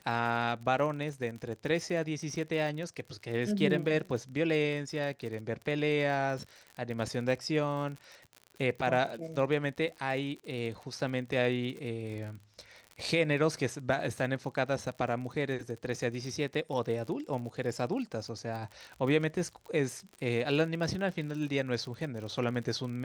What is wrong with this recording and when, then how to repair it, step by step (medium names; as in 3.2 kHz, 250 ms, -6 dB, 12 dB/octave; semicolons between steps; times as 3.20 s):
crackle 43 per s -38 dBFS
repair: de-click